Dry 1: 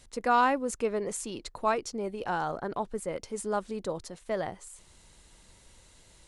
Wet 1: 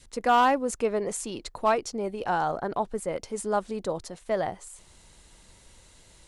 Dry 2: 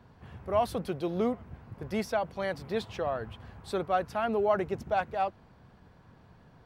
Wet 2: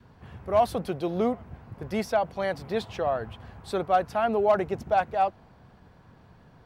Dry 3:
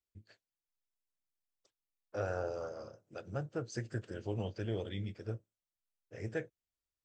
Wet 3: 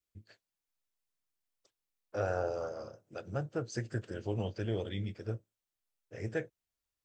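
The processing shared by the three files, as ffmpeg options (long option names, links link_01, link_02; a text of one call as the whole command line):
ffmpeg -i in.wav -af "volume=18.5dB,asoftclip=hard,volume=-18.5dB,adynamicequalizer=threshold=0.01:dfrequency=720:dqfactor=2.4:tfrequency=720:tqfactor=2.4:attack=5:release=100:ratio=0.375:range=2:mode=boostabove:tftype=bell,volume=2.5dB" out.wav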